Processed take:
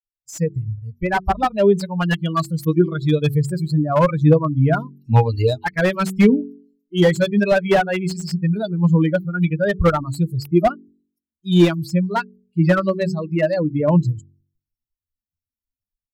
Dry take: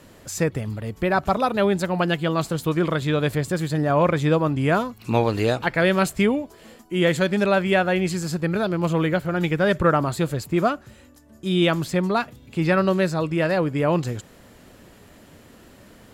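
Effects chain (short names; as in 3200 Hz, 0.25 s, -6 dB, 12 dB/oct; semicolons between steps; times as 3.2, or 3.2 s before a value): per-bin expansion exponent 3; low shelf 170 Hz +7.5 dB; AGC gain up to 13 dB; de-hum 47.17 Hz, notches 9; slew limiter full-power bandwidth 200 Hz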